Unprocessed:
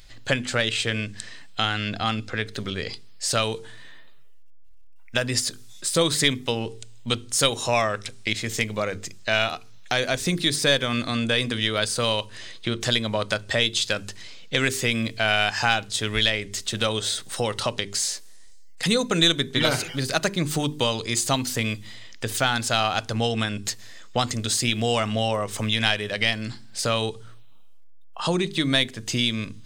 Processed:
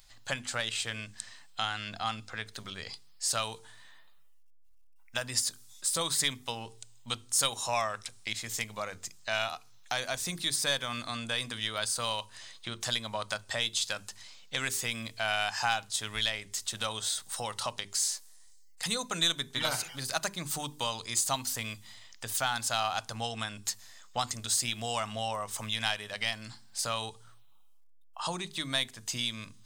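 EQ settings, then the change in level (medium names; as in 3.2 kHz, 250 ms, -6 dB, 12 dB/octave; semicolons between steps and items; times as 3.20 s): resonant low shelf 610 Hz -13 dB, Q 1.5; peaking EQ 2 kHz -11 dB 2.9 oct; hum notches 50/100/150/200 Hz; 0.0 dB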